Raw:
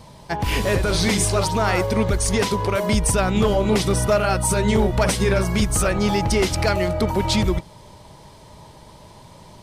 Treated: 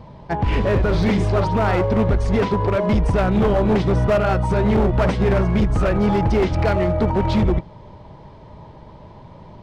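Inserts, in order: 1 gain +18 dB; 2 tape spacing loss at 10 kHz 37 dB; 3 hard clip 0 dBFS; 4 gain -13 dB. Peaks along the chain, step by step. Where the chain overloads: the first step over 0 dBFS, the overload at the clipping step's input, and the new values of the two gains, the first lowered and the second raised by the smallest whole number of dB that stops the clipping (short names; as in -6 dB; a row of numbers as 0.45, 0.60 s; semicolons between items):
+8.5, +7.0, 0.0, -13.0 dBFS; step 1, 7.0 dB; step 1 +11 dB, step 4 -6 dB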